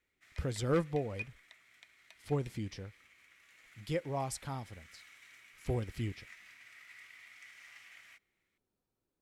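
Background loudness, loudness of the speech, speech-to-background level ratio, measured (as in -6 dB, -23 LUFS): -54.0 LUFS, -37.5 LUFS, 16.5 dB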